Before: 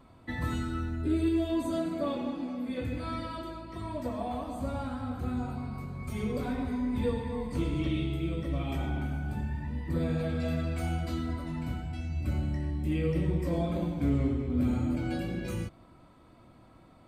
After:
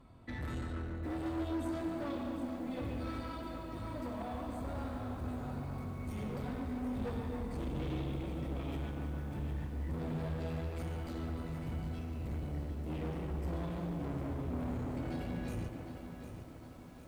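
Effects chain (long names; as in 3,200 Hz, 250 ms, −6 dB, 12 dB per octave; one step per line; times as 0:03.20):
low-shelf EQ 190 Hz +6.5 dB
tube saturation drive 32 dB, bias 0.35
tape delay 145 ms, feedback 84%, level −6.5 dB, low-pass 3,100 Hz
feedback echo at a low word length 756 ms, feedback 55%, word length 9 bits, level −9 dB
level −4.5 dB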